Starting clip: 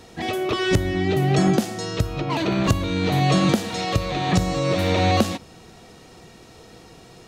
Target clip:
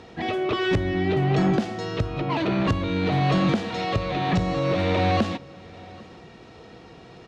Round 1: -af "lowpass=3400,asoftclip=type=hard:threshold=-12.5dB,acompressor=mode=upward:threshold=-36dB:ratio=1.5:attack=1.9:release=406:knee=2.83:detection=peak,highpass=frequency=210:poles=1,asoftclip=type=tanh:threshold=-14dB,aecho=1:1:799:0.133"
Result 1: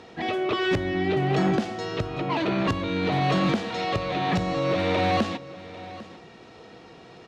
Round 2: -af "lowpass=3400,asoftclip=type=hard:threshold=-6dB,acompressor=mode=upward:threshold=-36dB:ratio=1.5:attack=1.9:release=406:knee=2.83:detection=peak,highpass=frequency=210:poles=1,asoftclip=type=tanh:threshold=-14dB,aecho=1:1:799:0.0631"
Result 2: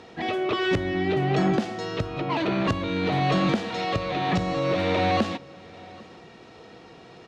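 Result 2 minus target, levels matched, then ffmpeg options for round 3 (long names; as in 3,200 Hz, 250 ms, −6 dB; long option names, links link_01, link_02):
125 Hz band −2.5 dB
-af "lowpass=3400,asoftclip=type=hard:threshold=-6dB,acompressor=mode=upward:threshold=-36dB:ratio=1.5:attack=1.9:release=406:knee=2.83:detection=peak,highpass=frequency=58:poles=1,asoftclip=type=tanh:threshold=-14dB,aecho=1:1:799:0.0631"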